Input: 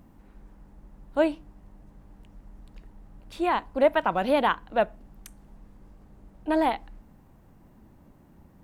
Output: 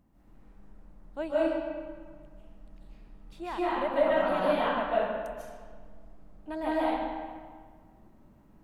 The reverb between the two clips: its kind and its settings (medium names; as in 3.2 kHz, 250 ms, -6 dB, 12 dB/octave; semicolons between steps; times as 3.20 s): algorithmic reverb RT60 1.7 s, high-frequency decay 0.7×, pre-delay 110 ms, DRR -9 dB; trim -13 dB